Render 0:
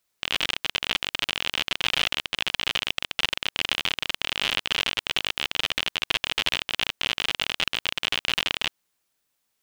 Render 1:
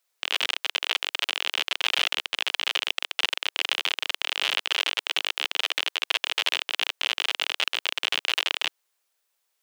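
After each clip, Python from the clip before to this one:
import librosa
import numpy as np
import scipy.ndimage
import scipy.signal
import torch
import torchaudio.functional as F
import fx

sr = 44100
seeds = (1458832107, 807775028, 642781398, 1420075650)

y = scipy.signal.sosfilt(scipy.signal.butter(4, 410.0, 'highpass', fs=sr, output='sos'), x)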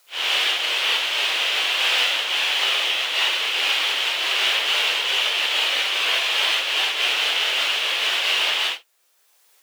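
y = fx.phase_scramble(x, sr, seeds[0], window_ms=200)
y = fx.mod_noise(y, sr, seeds[1], snr_db=30)
y = fx.band_squash(y, sr, depth_pct=40)
y = F.gain(torch.from_numpy(y), 6.5).numpy()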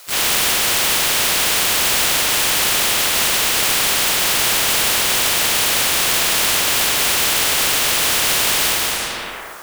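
y = fx.leveller(x, sr, passes=3)
y = fx.rev_plate(y, sr, seeds[2], rt60_s=1.4, hf_ratio=0.55, predelay_ms=110, drr_db=5.0)
y = fx.spectral_comp(y, sr, ratio=4.0)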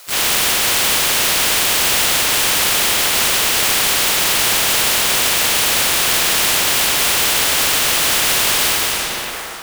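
y = x + 10.0 ** (-11.0 / 20.0) * np.pad(x, (int(521 * sr / 1000.0), 0))[:len(x)]
y = F.gain(torch.from_numpy(y), 1.0).numpy()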